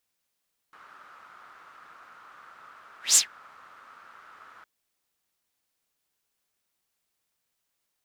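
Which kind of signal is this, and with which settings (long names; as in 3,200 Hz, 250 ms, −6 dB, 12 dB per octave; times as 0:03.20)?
pass-by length 3.91 s, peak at 0:02.43, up 0.16 s, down 0.13 s, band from 1,300 Hz, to 7,600 Hz, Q 5.1, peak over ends 35.5 dB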